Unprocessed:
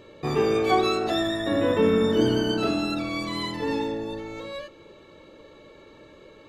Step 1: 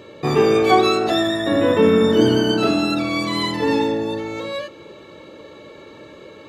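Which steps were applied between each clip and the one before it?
HPF 86 Hz; in parallel at +1.5 dB: vocal rider within 3 dB 2 s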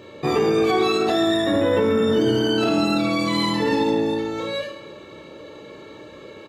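reverse bouncing-ball echo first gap 30 ms, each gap 1.4×, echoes 5; limiter -9 dBFS, peak gain reduction 7.5 dB; gain -2 dB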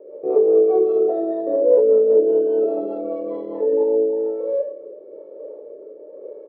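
rotary speaker horn 5 Hz, later 1 Hz, at 3.34; careless resampling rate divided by 6×, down none, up hold; Butterworth band-pass 500 Hz, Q 2.3; gain +8.5 dB

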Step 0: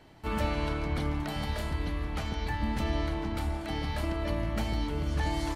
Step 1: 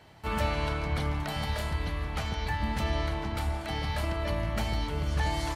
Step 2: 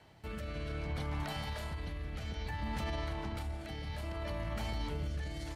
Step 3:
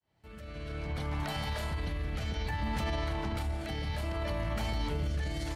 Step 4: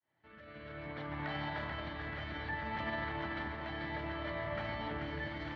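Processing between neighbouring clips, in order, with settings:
HPF 51 Hz; bell 290 Hz -8 dB 0.97 oct; gain +3 dB
limiter -26.5 dBFS, peak gain reduction 11 dB; rotary speaker horn 0.6 Hz; gain -2 dB
opening faded in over 1.59 s; in parallel at +2 dB: limiter -35 dBFS, peak gain reduction 7.5 dB
speaker cabinet 180–3300 Hz, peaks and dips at 200 Hz -8 dB, 440 Hz -6 dB, 730 Hz -3 dB, 1800 Hz +6 dB, 2600 Hz -6 dB; echo with dull and thin repeats by turns 0.218 s, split 880 Hz, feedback 75%, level -2 dB; gain -2.5 dB

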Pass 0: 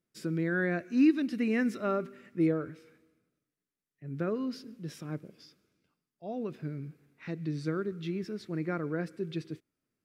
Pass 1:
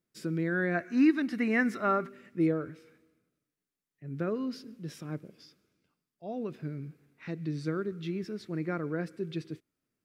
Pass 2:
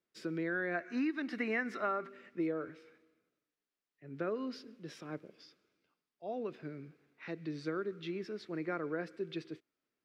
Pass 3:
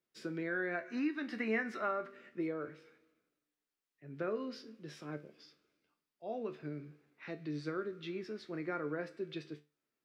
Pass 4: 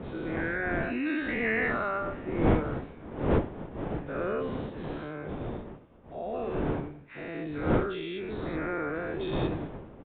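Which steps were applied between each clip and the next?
spectral gain 0.75–2.08, 630–2300 Hz +7 dB
three-band isolator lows -13 dB, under 300 Hz, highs -14 dB, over 5600 Hz; compressor 6:1, threshold -31 dBFS, peak gain reduction 9 dB
resonator 74 Hz, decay 0.27 s, harmonics all, mix 70%; gain +4.5 dB
spectral dilation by 0.24 s; wind noise 420 Hz -34 dBFS; downsampling 8000 Hz

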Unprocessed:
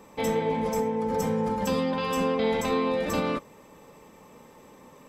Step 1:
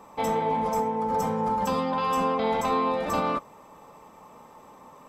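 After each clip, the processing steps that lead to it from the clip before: band shelf 930 Hz +8.5 dB 1.3 oct; gain -2.5 dB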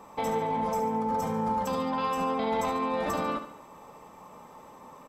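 limiter -21.5 dBFS, peak gain reduction 8 dB; on a send: feedback echo 72 ms, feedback 48%, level -10 dB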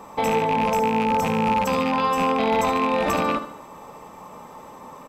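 rattling part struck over -36 dBFS, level -25 dBFS; gain +7.5 dB

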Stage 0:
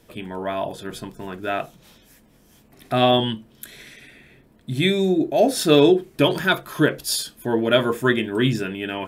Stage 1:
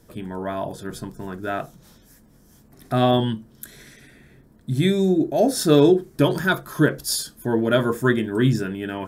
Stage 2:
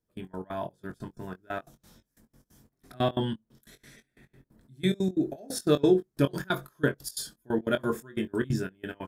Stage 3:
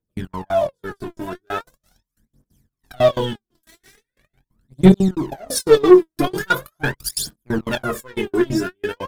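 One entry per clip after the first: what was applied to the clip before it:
EQ curve 140 Hz 0 dB, 670 Hz -6 dB, 1600 Hz -4 dB, 2600 Hz -14 dB, 5400 Hz -3 dB; gain +3.5 dB
step gate "..x.x.xx" 180 bpm -24 dB; doubler 22 ms -9.5 dB; gain -6.5 dB
sample leveller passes 3; phaser 0.41 Hz, delay 3.2 ms, feedback 77%; gain -3 dB

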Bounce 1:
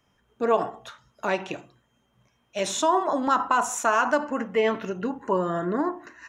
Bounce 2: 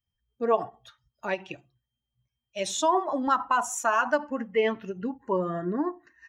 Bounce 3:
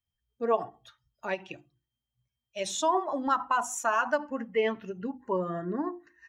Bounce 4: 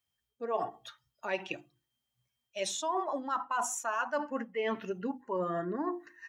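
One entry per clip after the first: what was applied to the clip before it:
per-bin expansion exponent 1.5; ending taper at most 410 dB/s
notches 50/100/150/200/250/300/350 Hz; gain -2.5 dB
HPF 310 Hz 6 dB/oct; reverse; compressor 6:1, threshold -36 dBFS, peak gain reduction 14.5 dB; reverse; gain +6 dB

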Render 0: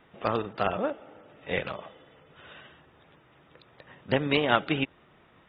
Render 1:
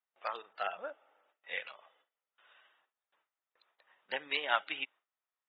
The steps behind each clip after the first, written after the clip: spectral noise reduction 9 dB; Chebyshev high-pass 900 Hz, order 2; gate with hold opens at -56 dBFS; gain -5 dB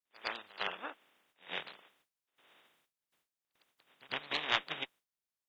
spectral limiter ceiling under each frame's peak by 27 dB; pre-echo 0.107 s -21 dB; added harmonics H 2 -14 dB, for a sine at -11.5 dBFS; gain -1 dB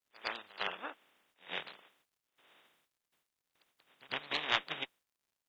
crackle 150/s -68 dBFS

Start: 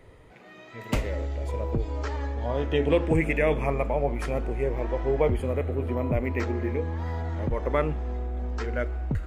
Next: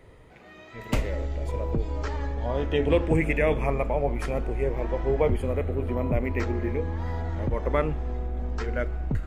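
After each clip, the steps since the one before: octaver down 2 oct, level -6 dB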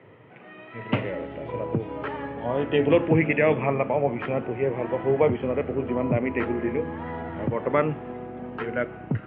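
Chebyshev band-pass 110–3000 Hz, order 4; gain +4 dB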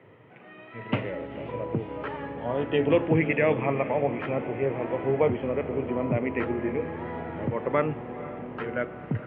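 diffused feedback echo 0.494 s, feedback 68%, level -14.5 dB; gain -2.5 dB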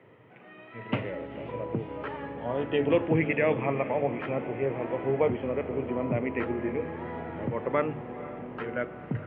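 notches 50/100/150 Hz; gain -2 dB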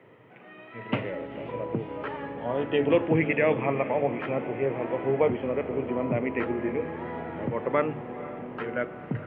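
bell 66 Hz -5.5 dB 1.5 oct; gain +2 dB

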